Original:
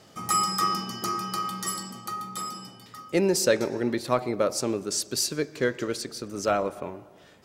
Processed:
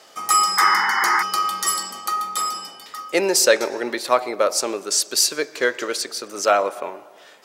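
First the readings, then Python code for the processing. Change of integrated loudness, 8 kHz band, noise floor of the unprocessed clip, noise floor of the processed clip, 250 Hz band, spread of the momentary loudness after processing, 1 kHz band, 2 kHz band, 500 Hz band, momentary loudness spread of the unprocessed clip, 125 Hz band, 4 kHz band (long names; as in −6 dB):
+7.5 dB, +9.0 dB, −53 dBFS, −47 dBFS, −2.0 dB, 11 LU, +9.0 dB, +13.0 dB, +5.0 dB, 12 LU, below −10 dB, +9.0 dB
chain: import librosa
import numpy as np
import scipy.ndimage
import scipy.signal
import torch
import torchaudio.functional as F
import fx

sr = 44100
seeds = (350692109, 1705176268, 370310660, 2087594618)

p1 = scipy.signal.sosfilt(scipy.signal.butter(2, 560.0, 'highpass', fs=sr, output='sos'), x)
p2 = fx.rider(p1, sr, range_db=10, speed_s=2.0)
p3 = p1 + (p2 * 10.0 ** (-1.0 / 20.0))
p4 = fx.spec_paint(p3, sr, seeds[0], shape='noise', start_s=0.57, length_s=0.66, low_hz=770.0, high_hz=2200.0, level_db=-23.0)
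y = p4 * 10.0 ** (3.0 / 20.0)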